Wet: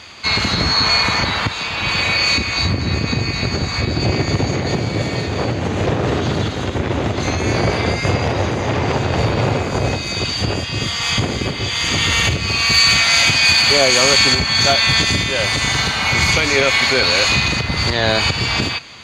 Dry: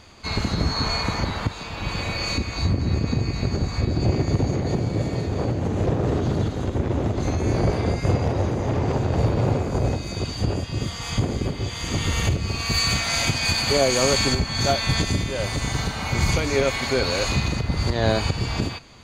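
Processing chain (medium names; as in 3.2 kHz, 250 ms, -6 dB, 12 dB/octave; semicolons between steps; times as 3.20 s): high-pass 64 Hz; peaking EQ 2.8 kHz +12 dB 2.9 oct; in parallel at 0 dB: peak limiter -10 dBFS, peak gain reduction 9 dB; on the sum: trim -3 dB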